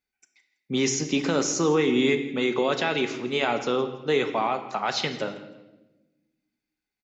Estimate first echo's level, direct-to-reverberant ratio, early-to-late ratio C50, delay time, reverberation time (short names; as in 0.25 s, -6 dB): -18.5 dB, 7.0 dB, 10.0 dB, 0.164 s, 1.1 s